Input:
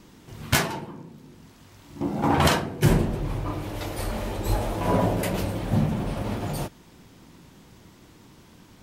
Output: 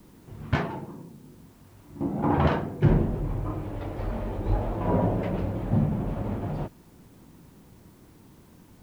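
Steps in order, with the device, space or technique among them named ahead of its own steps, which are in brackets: cassette deck with a dirty head (tape spacing loss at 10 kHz 44 dB; wow and flutter; white noise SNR 36 dB)

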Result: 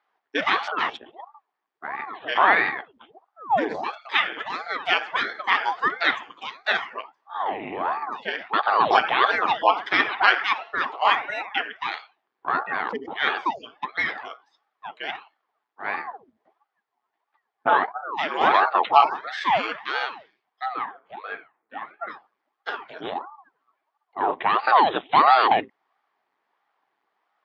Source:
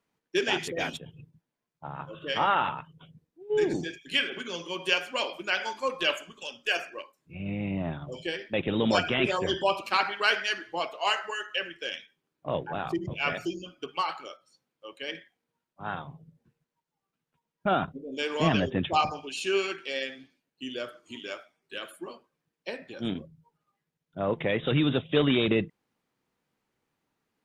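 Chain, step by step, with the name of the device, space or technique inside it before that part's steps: 20.65–22.06 LPF 1900 Hz -> 1100 Hz 12 dB/oct; voice changer toy (ring modulator with a swept carrier 550 Hz, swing 90%, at 1.5 Hz; speaker cabinet 420–4200 Hz, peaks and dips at 540 Hz -7 dB, 800 Hz +7 dB, 1100 Hz +5 dB, 1800 Hz +4 dB, 2700 Hz -4 dB, 3900 Hz -4 dB); gain +8 dB

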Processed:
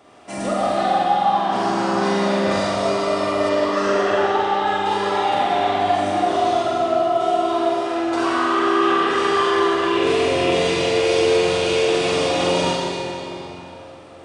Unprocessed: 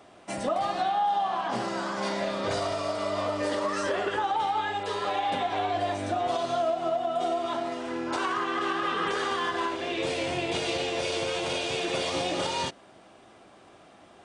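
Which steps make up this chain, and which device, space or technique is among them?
tunnel (flutter echo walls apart 7.7 m, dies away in 0.47 s; reverb RT60 3.4 s, pre-delay 33 ms, DRR -5 dB); 3.49–4.67 LPF 6100 Hz 12 dB/oct; gain +1 dB

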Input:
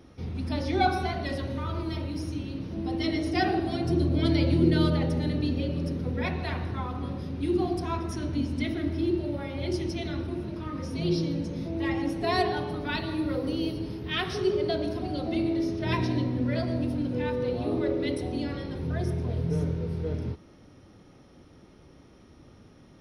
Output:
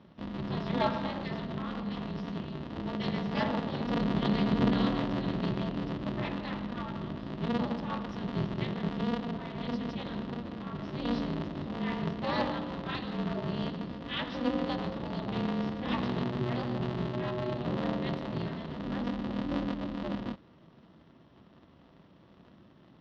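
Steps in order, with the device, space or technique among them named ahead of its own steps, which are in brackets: ring modulator pedal into a guitar cabinet (polarity switched at an audio rate 120 Hz; speaker cabinet 84–3700 Hz, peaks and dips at 160 Hz +3 dB, 440 Hz -10 dB, 760 Hz -5 dB, 1500 Hz -5 dB, 2300 Hz -8 dB); gain -2 dB

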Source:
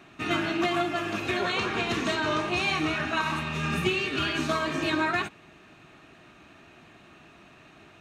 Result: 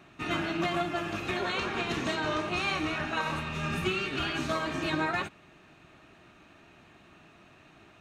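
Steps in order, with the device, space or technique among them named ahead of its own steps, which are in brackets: octave pedal (harmoniser -12 st -8 dB); gain -4 dB

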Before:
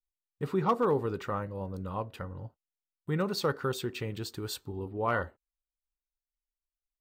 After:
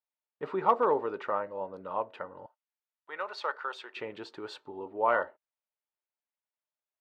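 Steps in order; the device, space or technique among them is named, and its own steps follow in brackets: tin-can telephone (BPF 430–2500 Hz; small resonant body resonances 620/890 Hz, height 8 dB); 2.46–3.97 HPF 880 Hz 12 dB/oct; gain +2.5 dB

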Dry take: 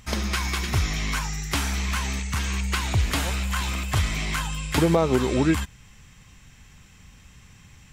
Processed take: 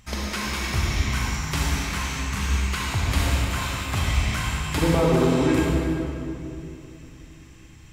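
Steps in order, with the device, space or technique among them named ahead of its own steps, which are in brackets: stairwell (reverb RT60 2.9 s, pre-delay 38 ms, DRR -3.5 dB); gain -4 dB

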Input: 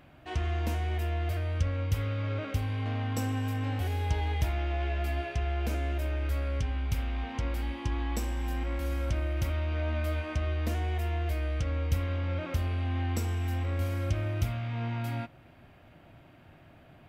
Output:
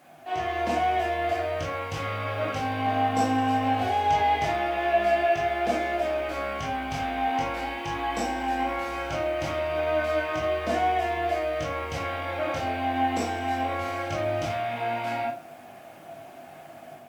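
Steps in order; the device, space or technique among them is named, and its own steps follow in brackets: filmed off a television (BPF 230–6500 Hz; bell 710 Hz +10 dB 0.58 oct; reverb RT60 0.35 s, pre-delay 16 ms, DRR -4.5 dB; white noise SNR 34 dB; AGC gain up to 5 dB; gain -2.5 dB; AAC 96 kbps 48000 Hz)

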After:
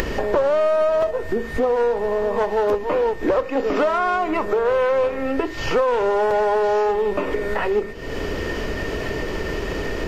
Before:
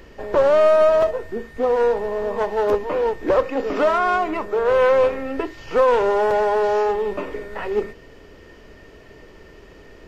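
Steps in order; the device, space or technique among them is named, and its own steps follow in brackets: upward and downward compression (upward compressor, threshold -22 dBFS; compressor 3:1, threshold -29 dBFS, peak gain reduction 13.5 dB); gain +9 dB

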